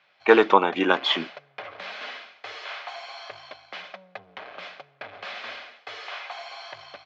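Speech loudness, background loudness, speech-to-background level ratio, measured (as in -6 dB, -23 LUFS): -20.5 LUFS, -38.5 LUFS, 18.0 dB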